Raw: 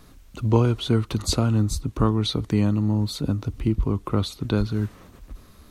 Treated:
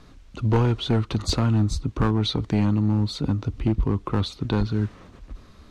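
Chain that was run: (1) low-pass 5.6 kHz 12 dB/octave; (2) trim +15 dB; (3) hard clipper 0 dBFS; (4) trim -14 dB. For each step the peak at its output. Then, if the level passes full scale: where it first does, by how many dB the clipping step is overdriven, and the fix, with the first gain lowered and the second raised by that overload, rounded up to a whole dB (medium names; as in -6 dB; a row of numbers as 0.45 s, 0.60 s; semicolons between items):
-5.0 dBFS, +10.0 dBFS, 0.0 dBFS, -14.0 dBFS; step 2, 10.0 dB; step 2 +5 dB, step 4 -4 dB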